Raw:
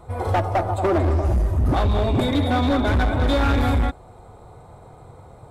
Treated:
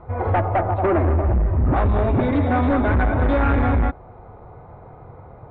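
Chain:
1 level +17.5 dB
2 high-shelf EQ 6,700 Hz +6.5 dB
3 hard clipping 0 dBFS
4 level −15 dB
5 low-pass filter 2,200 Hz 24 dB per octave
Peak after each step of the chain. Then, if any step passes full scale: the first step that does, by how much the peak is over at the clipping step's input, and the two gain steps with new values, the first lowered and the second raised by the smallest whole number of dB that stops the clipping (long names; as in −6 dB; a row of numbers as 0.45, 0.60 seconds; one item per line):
+3.5, +3.5, 0.0, −15.0, −13.5 dBFS
step 1, 3.5 dB
step 1 +13.5 dB, step 4 −11 dB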